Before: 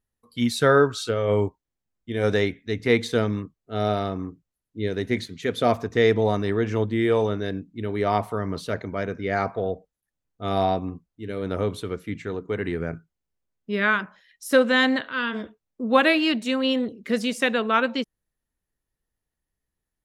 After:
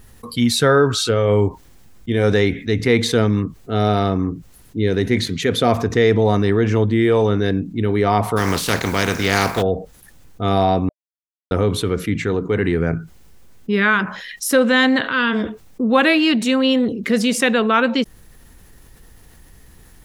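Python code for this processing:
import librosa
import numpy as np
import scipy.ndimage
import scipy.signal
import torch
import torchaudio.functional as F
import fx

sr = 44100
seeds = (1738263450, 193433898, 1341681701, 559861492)

y = fx.spec_flatten(x, sr, power=0.45, at=(8.36, 9.61), fade=0.02)
y = fx.edit(y, sr, fx.silence(start_s=10.89, length_s=0.62), tone=tone)
y = fx.low_shelf(y, sr, hz=230.0, db=3.5)
y = fx.notch(y, sr, hz=610.0, q=12.0)
y = fx.env_flatten(y, sr, amount_pct=50)
y = y * 10.0 ** (1.5 / 20.0)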